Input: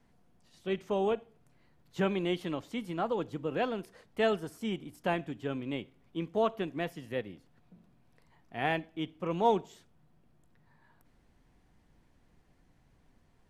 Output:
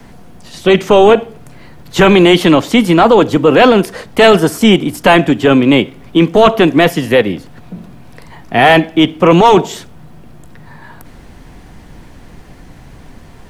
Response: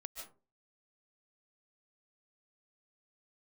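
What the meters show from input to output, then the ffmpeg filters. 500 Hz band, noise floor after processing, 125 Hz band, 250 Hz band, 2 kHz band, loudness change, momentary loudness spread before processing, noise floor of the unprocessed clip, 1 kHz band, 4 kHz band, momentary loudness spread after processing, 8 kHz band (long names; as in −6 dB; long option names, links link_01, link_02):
+23.5 dB, −37 dBFS, +24.0 dB, +25.5 dB, +25.0 dB, +24.0 dB, 10 LU, −67 dBFS, +23.0 dB, +27.0 dB, 6 LU, can't be measured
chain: -filter_complex "[0:a]acrossover=split=150|1000|1800[link_01][link_02][link_03][link_04];[link_01]acompressor=threshold=-57dB:ratio=5[link_05];[link_05][link_02][link_03][link_04]amix=inputs=4:normalize=0,apsyclip=31dB,volume=-1.5dB"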